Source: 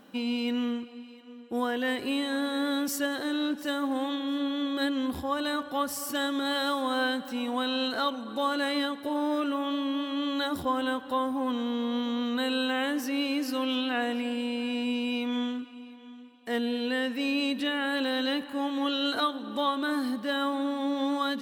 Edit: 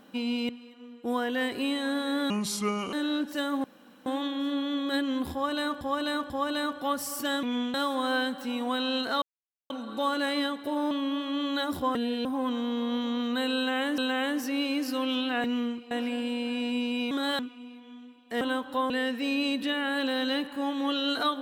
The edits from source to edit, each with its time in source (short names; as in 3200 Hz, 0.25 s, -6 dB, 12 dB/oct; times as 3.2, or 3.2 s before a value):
0.49–0.96 move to 14.04
2.77–3.23 speed 73%
3.94 insert room tone 0.42 s
5.2–5.69 loop, 3 plays
6.33–6.61 swap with 15.24–15.55
8.09 insert silence 0.48 s
9.3–9.74 cut
10.78–11.27 swap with 16.57–16.87
12.58–13 loop, 2 plays